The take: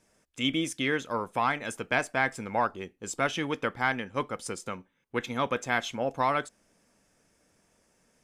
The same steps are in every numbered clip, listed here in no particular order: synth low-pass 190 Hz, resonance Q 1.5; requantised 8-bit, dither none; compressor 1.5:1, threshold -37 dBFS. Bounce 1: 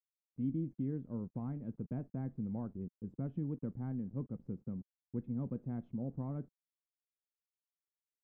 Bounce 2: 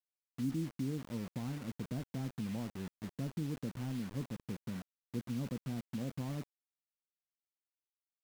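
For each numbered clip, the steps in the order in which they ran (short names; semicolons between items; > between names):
requantised > synth low-pass > compressor; synth low-pass > requantised > compressor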